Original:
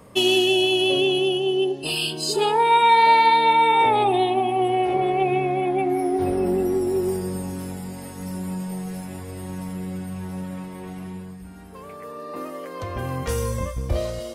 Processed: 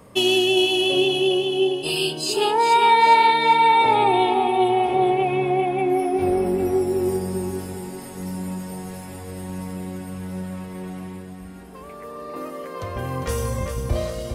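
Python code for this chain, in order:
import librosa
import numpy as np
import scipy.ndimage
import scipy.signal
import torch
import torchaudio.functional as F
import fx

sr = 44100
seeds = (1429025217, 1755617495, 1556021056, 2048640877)

y = fx.echo_feedback(x, sr, ms=403, feedback_pct=42, wet_db=-7.5)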